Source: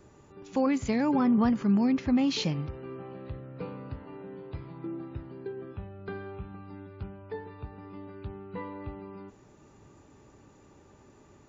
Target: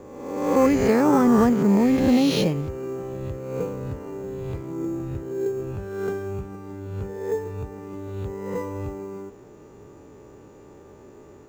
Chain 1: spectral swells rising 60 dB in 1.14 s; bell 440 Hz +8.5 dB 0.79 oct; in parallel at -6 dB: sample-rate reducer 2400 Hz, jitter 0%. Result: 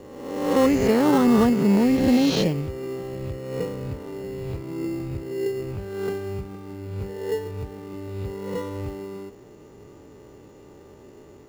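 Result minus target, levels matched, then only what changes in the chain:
sample-rate reducer: distortion +7 dB
change: sample-rate reducer 7000 Hz, jitter 0%

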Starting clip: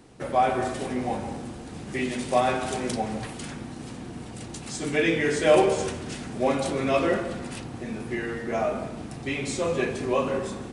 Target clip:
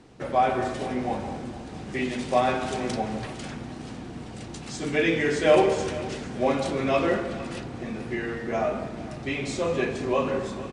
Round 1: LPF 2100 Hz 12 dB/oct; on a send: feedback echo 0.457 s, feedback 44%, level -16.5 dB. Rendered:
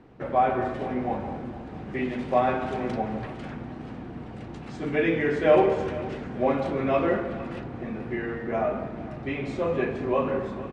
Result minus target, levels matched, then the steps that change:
8000 Hz band -18.0 dB
change: LPF 6600 Hz 12 dB/oct

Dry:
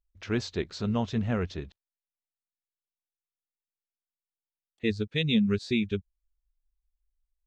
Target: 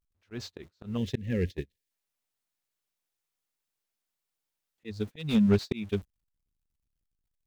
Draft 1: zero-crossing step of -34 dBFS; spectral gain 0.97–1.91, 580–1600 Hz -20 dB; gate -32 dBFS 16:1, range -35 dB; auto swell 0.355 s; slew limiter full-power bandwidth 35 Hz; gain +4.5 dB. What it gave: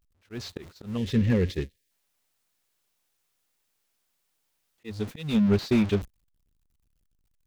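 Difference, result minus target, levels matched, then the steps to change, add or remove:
zero-crossing step: distortion +10 dB
change: zero-crossing step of -45 dBFS

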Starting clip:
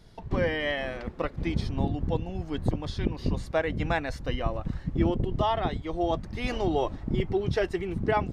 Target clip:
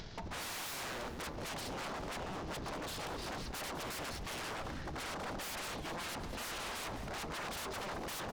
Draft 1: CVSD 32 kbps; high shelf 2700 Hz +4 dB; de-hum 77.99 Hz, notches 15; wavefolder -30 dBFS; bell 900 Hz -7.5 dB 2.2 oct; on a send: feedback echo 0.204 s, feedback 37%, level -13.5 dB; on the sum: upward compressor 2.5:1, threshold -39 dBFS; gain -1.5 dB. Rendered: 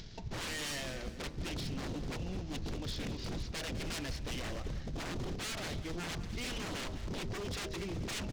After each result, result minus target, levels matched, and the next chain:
wavefolder: distortion -15 dB; 1000 Hz band -7.0 dB
CVSD 32 kbps; high shelf 2700 Hz +4 dB; de-hum 77.99 Hz, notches 15; wavefolder -37.5 dBFS; bell 900 Hz -7.5 dB 2.2 oct; on a send: feedback echo 0.204 s, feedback 37%, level -13.5 dB; on the sum: upward compressor 2.5:1, threshold -39 dBFS; gain -1.5 dB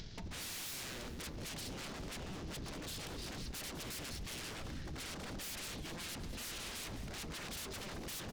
1000 Hz band -7.0 dB
CVSD 32 kbps; high shelf 2700 Hz +4 dB; de-hum 77.99 Hz, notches 15; wavefolder -37.5 dBFS; bell 900 Hz +4 dB 2.2 oct; on a send: feedback echo 0.204 s, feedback 37%, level -13.5 dB; on the sum: upward compressor 2.5:1, threshold -39 dBFS; gain -1.5 dB

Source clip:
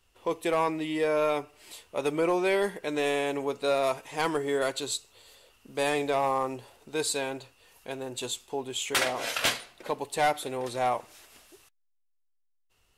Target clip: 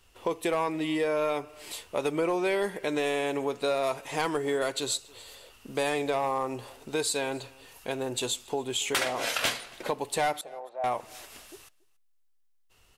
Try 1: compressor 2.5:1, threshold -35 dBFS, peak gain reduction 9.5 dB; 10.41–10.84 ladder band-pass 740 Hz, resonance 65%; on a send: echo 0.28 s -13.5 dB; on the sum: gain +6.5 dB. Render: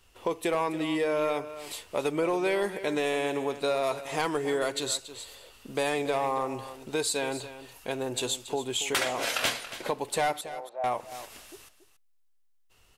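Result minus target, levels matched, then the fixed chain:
echo-to-direct +11.5 dB
compressor 2.5:1, threshold -35 dBFS, peak gain reduction 9.5 dB; 10.41–10.84 ladder band-pass 740 Hz, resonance 65%; on a send: echo 0.28 s -25 dB; on the sum: gain +6.5 dB

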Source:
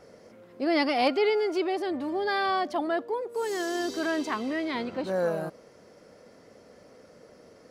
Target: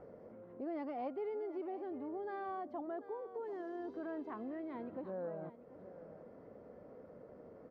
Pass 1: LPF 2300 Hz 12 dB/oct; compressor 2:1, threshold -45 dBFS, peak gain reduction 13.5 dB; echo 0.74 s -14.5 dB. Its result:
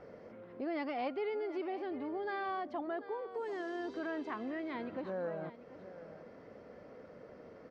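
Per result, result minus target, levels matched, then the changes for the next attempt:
2000 Hz band +7.5 dB; compressor: peak gain reduction -3 dB
change: LPF 1000 Hz 12 dB/oct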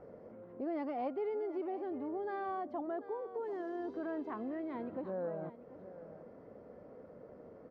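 compressor: peak gain reduction -3.5 dB
change: compressor 2:1, threshold -52 dBFS, peak gain reduction 16.5 dB

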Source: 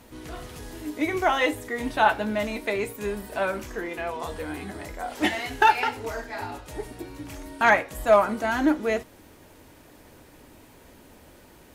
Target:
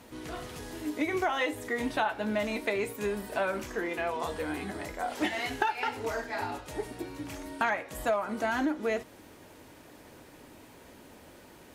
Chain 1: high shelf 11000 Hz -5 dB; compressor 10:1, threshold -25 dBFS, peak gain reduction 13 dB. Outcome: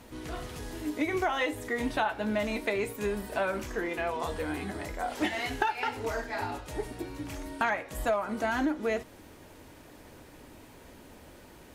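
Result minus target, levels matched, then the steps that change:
125 Hz band +3.0 dB
add after compressor: low shelf 64 Hz -12 dB

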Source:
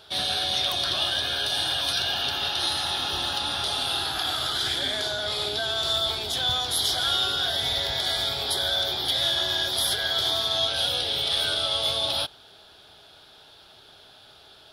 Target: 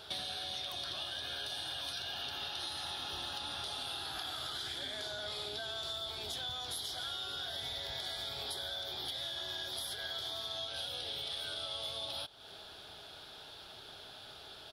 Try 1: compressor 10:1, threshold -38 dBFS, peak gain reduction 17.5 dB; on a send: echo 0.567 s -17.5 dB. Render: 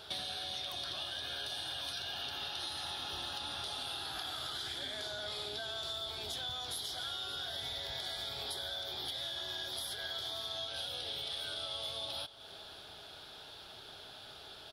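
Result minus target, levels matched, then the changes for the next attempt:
echo-to-direct +7.5 dB
change: echo 0.567 s -25 dB

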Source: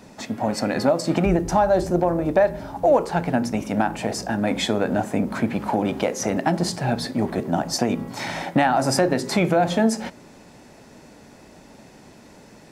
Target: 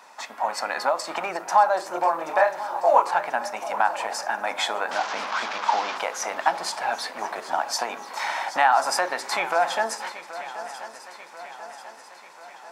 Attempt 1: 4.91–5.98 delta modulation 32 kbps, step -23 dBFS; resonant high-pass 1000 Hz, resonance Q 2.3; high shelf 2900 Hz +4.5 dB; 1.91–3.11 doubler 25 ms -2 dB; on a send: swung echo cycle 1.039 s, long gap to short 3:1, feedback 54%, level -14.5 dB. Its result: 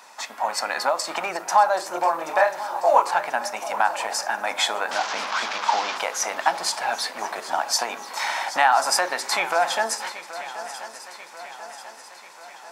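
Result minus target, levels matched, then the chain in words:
8000 Hz band +4.5 dB
4.91–5.98 delta modulation 32 kbps, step -23 dBFS; resonant high-pass 1000 Hz, resonance Q 2.3; high shelf 2900 Hz -2.5 dB; 1.91–3.11 doubler 25 ms -2 dB; on a send: swung echo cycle 1.039 s, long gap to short 3:1, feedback 54%, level -14.5 dB

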